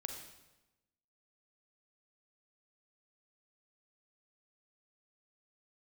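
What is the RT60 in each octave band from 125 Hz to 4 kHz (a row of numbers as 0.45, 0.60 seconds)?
1.2, 1.2, 1.0, 1.0, 0.95, 0.90 seconds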